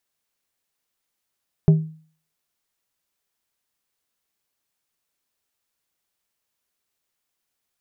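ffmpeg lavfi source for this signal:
ffmpeg -f lavfi -i "aevalsrc='0.447*pow(10,-3*t/0.45)*sin(2*PI*158*t)+0.126*pow(10,-3*t/0.237)*sin(2*PI*395*t)+0.0355*pow(10,-3*t/0.171)*sin(2*PI*632*t)+0.01*pow(10,-3*t/0.146)*sin(2*PI*790*t)+0.00282*pow(10,-3*t/0.121)*sin(2*PI*1027*t)':duration=0.89:sample_rate=44100" out.wav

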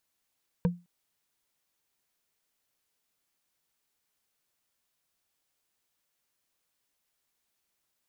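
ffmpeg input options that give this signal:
ffmpeg -f lavfi -i "aevalsrc='0.119*pow(10,-3*t/0.26)*sin(2*PI*175*t)+0.0596*pow(10,-3*t/0.077)*sin(2*PI*482.5*t)+0.0299*pow(10,-3*t/0.034)*sin(2*PI*945.7*t)+0.015*pow(10,-3*t/0.019)*sin(2*PI*1563.3*t)+0.0075*pow(10,-3*t/0.012)*sin(2*PI*2334.5*t)':duration=0.21:sample_rate=44100" out.wav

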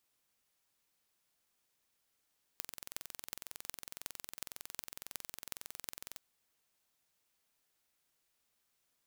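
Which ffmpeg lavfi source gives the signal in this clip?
ffmpeg -f lavfi -i "aevalsrc='0.282*eq(mod(n,2014),0)*(0.5+0.5*eq(mod(n,16112),0))':duration=3.59:sample_rate=44100" out.wav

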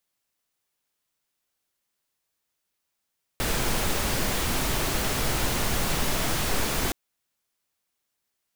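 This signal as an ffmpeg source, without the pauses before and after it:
ffmpeg -f lavfi -i "anoisesrc=color=pink:amplitude=0.272:duration=3.52:sample_rate=44100:seed=1" out.wav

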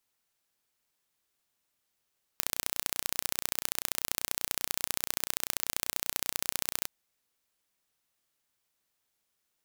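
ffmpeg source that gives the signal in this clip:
ffmpeg -f lavfi -i "aevalsrc='0.891*eq(mod(n,1455),0)*(0.5+0.5*eq(mod(n,2910),0))':duration=4.47:sample_rate=44100" out.wav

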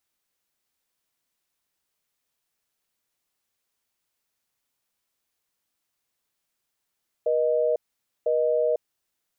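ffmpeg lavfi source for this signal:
ffmpeg -f lavfi -i "aevalsrc='0.075*(sin(2*PI*480*t)+sin(2*PI*620*t))*clip(min(mod(t,1),0.5-mod(t,1))/0.005,0,1)':duration=1.55:sample_rate=44100" out.wav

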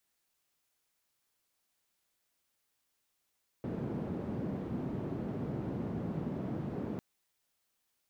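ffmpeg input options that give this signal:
ffmpeg -f lavfi -i "anoisesrc=color=white:duration=3.35:sample_rate=44100:seed=1,highpass=frequency=140,lowpass=frequency=220,volume=-9.1dB" out.wav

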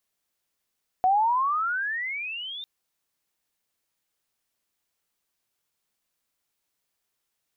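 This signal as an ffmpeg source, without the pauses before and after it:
ffmpeg -f lavfi -i "aevalsrc='pow(10,(-17-17*t/1.6)/20)*sin(2*PI*728*1.6/(28*log(2)/12)*(exp(28*log(2)/12*t/1.6)-1))':duration=1.6:sample_rate=44100" out.wav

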